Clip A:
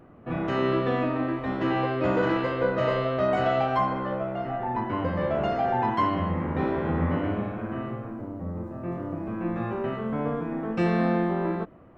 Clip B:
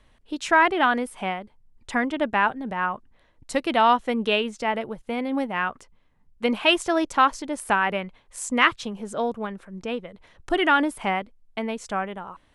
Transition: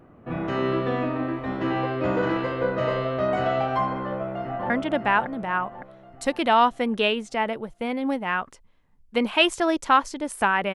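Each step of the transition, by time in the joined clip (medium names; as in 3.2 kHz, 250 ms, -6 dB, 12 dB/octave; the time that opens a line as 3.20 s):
clip A
4.03–4.70 s: echo throw 560 ms, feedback 45%, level -4 dB
4.70 s: go over to clip B from 1.98 s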